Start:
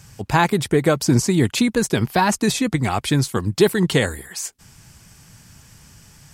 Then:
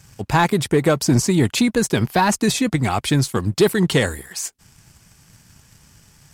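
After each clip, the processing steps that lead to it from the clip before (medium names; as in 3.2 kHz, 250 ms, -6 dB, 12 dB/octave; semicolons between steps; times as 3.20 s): waveshaping leveller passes 1; trim -2.5 dB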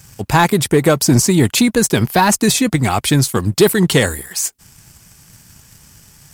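treble shelf 9.4 kHz +10.5 dB; trim +4 dB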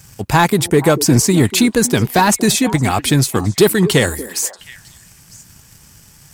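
repeats whose band climbs or falls 238 ms, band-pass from 330 Hz, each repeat 1.4 oct, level -11 dB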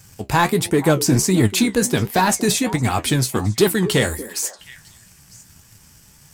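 flange 1.4 Hz, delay 8.5 ms, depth 8.4 ms, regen +54%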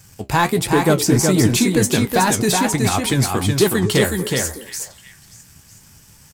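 delay 370 ms -4 dB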